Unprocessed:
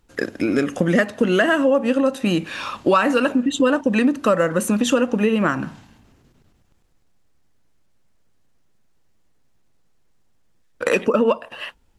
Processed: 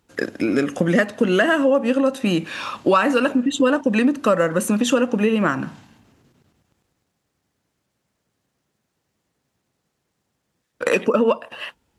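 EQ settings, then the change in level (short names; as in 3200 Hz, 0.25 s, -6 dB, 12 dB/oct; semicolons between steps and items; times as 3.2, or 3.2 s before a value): HPF 90 Hz; 0.0 dB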